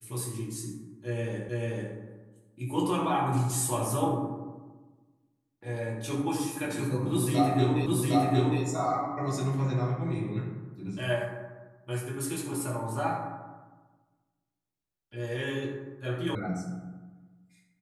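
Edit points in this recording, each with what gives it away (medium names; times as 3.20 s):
1.49 s: repeat of the last 0.44 s
7.86 s: repeat of the last 0.76 s
16.35 s: sound stops dead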